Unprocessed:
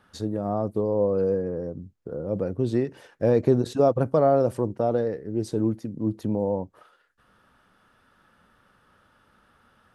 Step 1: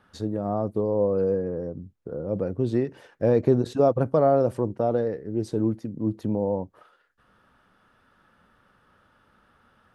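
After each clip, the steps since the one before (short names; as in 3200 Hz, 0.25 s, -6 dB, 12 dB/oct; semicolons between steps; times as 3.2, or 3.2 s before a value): high shelf 4700 Hz -6 dB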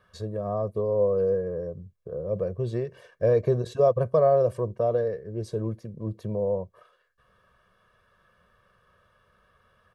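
comb 1.8 ms, depth 91%; gain -4.5 dB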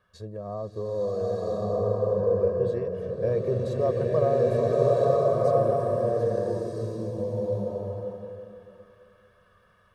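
bloom reverb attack 1.34 s, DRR -6 dB; gain -5.5 dB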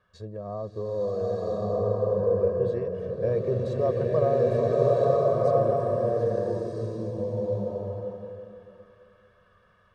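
air absorption 55 m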